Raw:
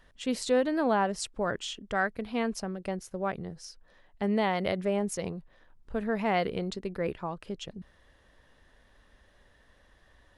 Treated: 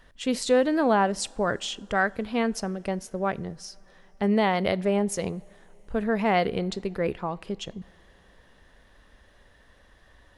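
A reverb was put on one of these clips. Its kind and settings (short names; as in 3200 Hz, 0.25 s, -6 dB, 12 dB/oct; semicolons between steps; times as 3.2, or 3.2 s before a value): two-slope reverb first 0.43 s, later 4.9 s, from -18 dB, DRR 20 dB; gain +4.5 dB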